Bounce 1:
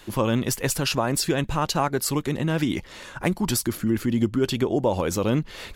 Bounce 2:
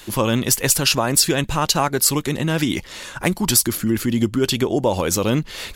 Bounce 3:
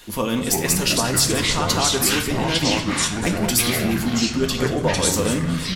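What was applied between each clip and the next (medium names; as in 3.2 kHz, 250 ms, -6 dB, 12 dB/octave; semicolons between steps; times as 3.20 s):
treble shelf 2.8 kHz +8.5 dB; trim +3 dB
delay 179 ms -12 dB; reverberation RT60 0.55 s, pre-delay 4 ms, DRR 3.5 dB; ever faster or slower copies 283 ms, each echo -5 st, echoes 3; trim -5 dB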